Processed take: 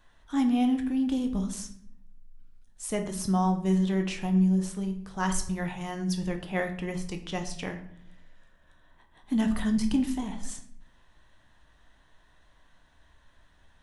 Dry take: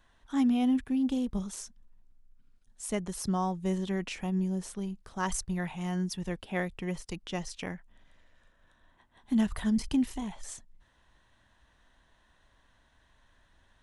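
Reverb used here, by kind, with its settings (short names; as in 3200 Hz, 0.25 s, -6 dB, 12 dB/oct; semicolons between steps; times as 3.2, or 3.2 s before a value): shoebox room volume 120 m³, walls mixed, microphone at 0.47 m; gain +1.5 dB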